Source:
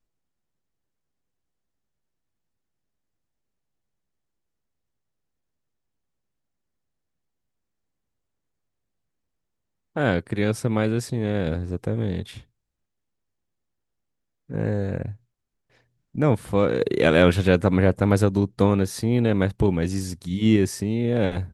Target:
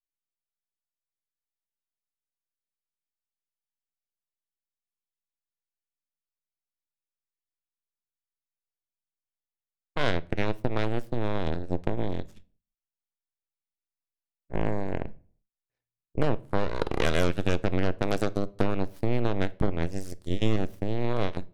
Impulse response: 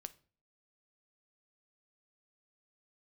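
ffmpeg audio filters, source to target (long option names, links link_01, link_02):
-filter_complex "[0:a]aeval=exprs='0.668*(cos(1*acos(clip(val(0)/0.668,-1,1)))-cos(1*PI/2))+0.0668*(cos(6*acos(clip(val(0)/0.668,-1,1)))-cos(6*PI/2))+0.0944*(cos(7*acos(clip(val(0)/0.668,-1,1)))-cos(7*PI/2))':channel_layout=same,asettb=1/sr,asplit=3[link_01][link_02][link_03];[link_01]atrim=end=18.024[link_04];[link_02]atrim=start=18.02:end=18.58,asetpts=PTS-STARTPTS,afade=type=in:duration=0.004:curve=qsin,afade=type=out:start_time=0.556:duration=0.004:curve=qsin,bass=frequency=250:gain=-6,treble=frequency=4000:gain=6[link_05];[link_03]atrim=start=18.576[link_06];[link_04][link_05]acrossfade=duration=0.004:curve1=hsin:curve2=qsin[link_07];[link_07][link_06]acrossfade=duration=0.004:curve1=qsin:curve2=hsin,acompressor=threshold=-35dB:ratio=4,asplit=2[link_08][link_09];[1:a]atrim=start_sample=2205,lowshelf=frequency=65:gain=7.5[link_10];[link_09][link_10]afir=irnorm=-1:irlink=0,volume=11.5dB[link_11];[link_08][link_11]amix=inputs=2:normalize=0"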